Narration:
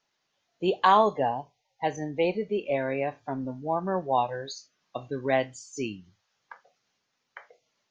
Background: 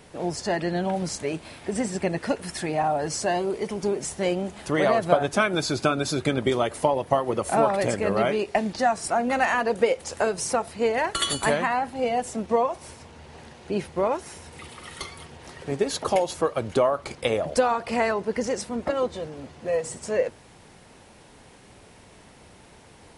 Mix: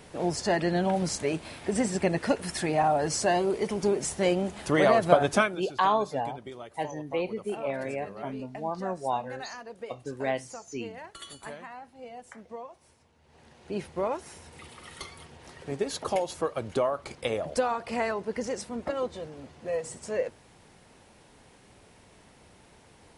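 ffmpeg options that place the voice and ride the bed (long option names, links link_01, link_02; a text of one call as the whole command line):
ffmpeg -i stem1.wav -i stem2.wav -filter_complex "[0:a]adelay=4950,volume=-4.5dB[link_01];[1:a]volume=13.5dB,afade=type=out:start_time=5.37:duration=0.21:silence=0.112202,afade=type=in:start_time=13.21:duration=0.6:silence=0.211349[link_02];[link_01][link_02]amix=inputs=2:normalize=0" out.wav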